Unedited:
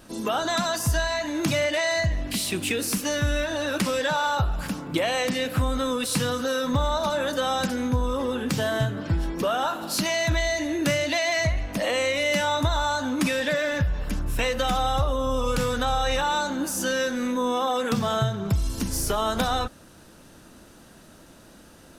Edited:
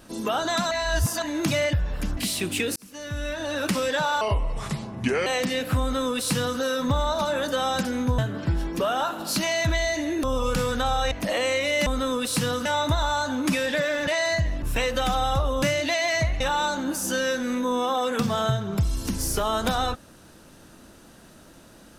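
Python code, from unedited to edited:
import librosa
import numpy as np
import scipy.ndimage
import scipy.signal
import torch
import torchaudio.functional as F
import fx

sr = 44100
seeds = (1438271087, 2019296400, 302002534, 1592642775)

y = fx.edit(x, sr, fx.reverse_span(start_s=0.71, length_s=0.51),
    fx.swap(start_s=1.73, length_s=0.55, other_s=13.81, other_length_s=0.44),
    fx.fade_in_span(start_s=2.87, length_s=0.89),
    fx.speed_span(start_s=4.32, length_s=0.79, speed=0.75),
    fx.duplicate(start_s=5.65, length_s=0.79, to_s=12.39),
    fx.cut(start_s=8.03, length_s=0.78),
    fx.swap(start_s=10.86, length_s=0.78, other_s=15.25, other_length_s=0.88), tone=tone)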